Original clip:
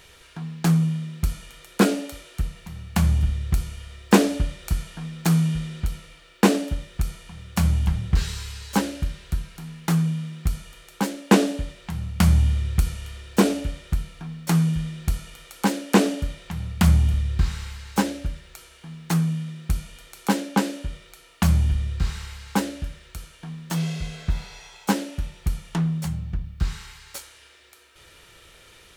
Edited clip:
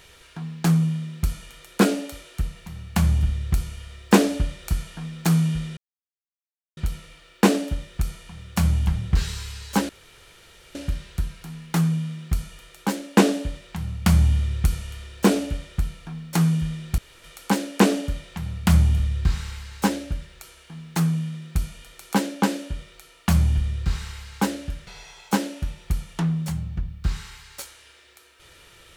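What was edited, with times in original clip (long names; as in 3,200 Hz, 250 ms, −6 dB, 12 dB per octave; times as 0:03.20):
0:05.77: splice in silence 1.00 s
0:08.89: splice in room tone 0.86 s
0:15.12–0:15.38: fill with room tone
0:23.01–0:24.43: remove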